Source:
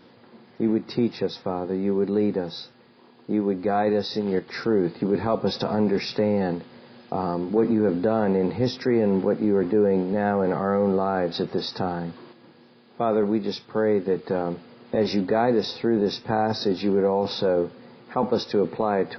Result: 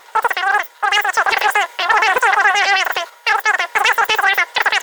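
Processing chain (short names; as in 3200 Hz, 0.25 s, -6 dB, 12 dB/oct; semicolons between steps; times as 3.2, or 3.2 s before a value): wide varispeed 3.98×; Doppler distortion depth 0.21 ms; gain +8 dB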